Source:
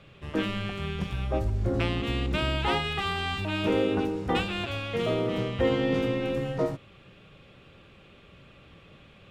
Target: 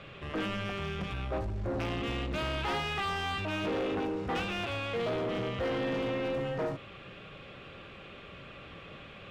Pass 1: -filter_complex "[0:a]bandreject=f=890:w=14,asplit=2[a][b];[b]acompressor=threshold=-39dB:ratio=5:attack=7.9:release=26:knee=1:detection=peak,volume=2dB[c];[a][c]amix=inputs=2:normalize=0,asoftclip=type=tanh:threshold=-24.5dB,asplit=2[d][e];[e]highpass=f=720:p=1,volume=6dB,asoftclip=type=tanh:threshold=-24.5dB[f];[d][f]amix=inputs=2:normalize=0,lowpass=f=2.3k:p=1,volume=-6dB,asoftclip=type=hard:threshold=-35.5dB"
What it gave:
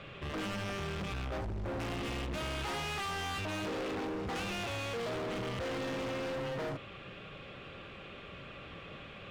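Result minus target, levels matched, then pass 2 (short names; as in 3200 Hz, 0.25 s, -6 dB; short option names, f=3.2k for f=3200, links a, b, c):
hard clip: distortion +13 dB; compressor: peak gain reduction -7.5 dB
-filter_complex "[0:a]bandreject=f=890:w=14,asplit=2[a][b];[b]acompressor=threshold=-48.5dB:ratio=5:attack=7.9:release=26:knee=1:detection=peak,volume=2dB[c];[a][c]amix=inputs=2:normalize=0,asoftclip=type=tanh:threshold=-24.5dB,asplit=2[d][e];[e]highpass=f=720:p=1,volume=6dB,asoftclip=type=tanh:threshold=-24.5dB[f];[d][f]amix=inputs=2:normalize=0,lowpass=f=2.3k:p=1,volume=-6dB,asoftclip=type=hard:threshold=-28.5dB"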